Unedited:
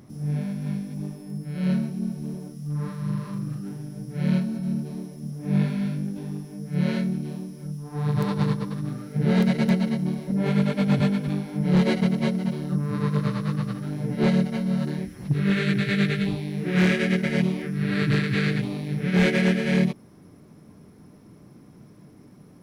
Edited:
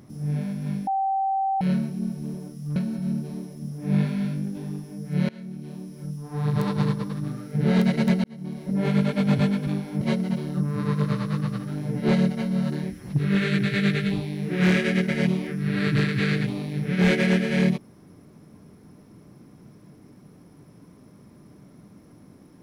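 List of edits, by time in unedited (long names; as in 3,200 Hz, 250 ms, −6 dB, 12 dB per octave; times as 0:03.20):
0:00.87–0:01.61: beep over 776 Hz −21 dBFS
0:02.76–0:04.37: remove
0:06.90–0:07.65: fade in linear, from −24 dB
0:09.85–0:10.39: fade in
0:11.62–0:12.16: remove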